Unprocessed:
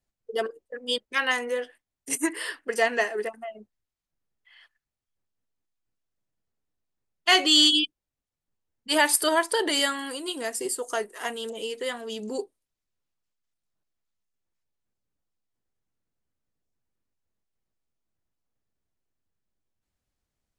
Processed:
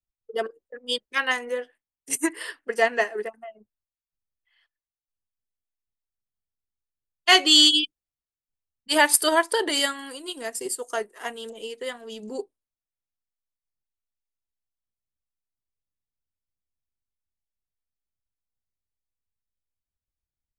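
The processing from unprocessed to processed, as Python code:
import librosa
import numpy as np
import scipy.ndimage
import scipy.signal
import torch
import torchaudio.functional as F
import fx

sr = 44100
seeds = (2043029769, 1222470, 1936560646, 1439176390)

y = fx.transient(x, sr, attack_db=1, sustain_db=-5)
y = fx.band_widen(y, sr, depth_pct=40)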